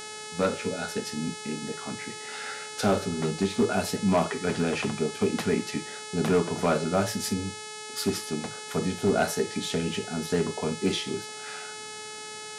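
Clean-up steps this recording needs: clip repair -16 dBFS; de-hum 428.4 Hz, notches 23; expander -32 dBFS, range -21 dB

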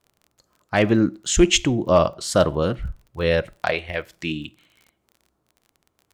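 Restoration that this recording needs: clip repair -6 dBFS; de-click

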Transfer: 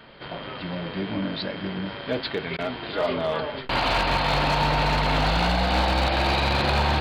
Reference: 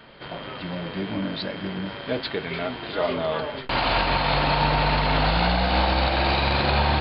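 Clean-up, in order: clip repair -16.5 dBFS; interpolate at 2.57 s, 15 ms

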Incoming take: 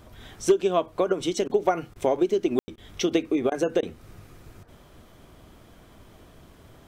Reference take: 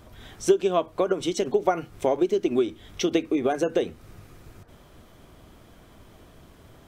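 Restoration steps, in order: clip repair -10.5 dBFS; room tone fill 2.59–2.68 s; interpolate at 1.48/1.94/2.76/3.50/3.81 s, 16 ms

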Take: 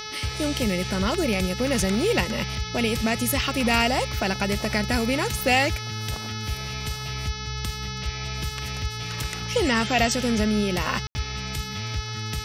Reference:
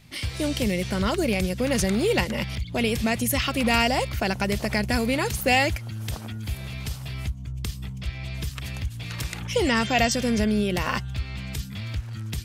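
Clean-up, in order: de-hum 429.2 Hz, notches 14; band-stop 1.3 kHz, Q 30; room tone fill 11.07–11.15 s

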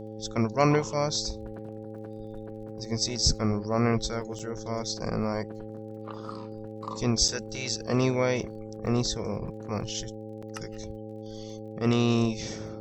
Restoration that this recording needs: de-click; de-hum 108.2 Hz, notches 5; band-stop 790 Hz, Q 30; interpolate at 4.39/7.28/8.86/10.42 s, 5.8 ms

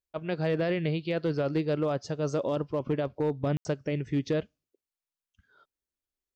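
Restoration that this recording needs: clip repair -20.5 dBFS; room tone fill 3.57–3.65 s

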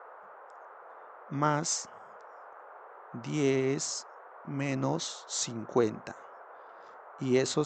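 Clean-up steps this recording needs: noise print and reduce 25 dB

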